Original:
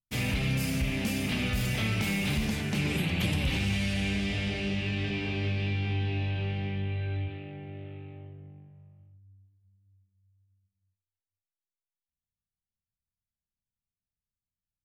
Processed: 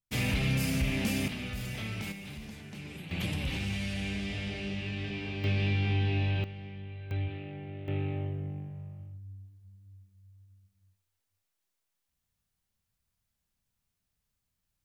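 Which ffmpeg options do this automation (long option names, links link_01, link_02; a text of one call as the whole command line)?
ffmpeg -i in.wav -af "asetnsamples=nb_out_samples=441:pad=0,asendcmd='1.28 volume volume -8dB;2.12 volume volume -14.5dB;3.11 volume volume -5dB;5.44 volume volume 1.5dB;6.44 volume volume -10.5dB;7.11 volume volume 0dB;7.88 volume volume 11dB',volume=0dB" out.wav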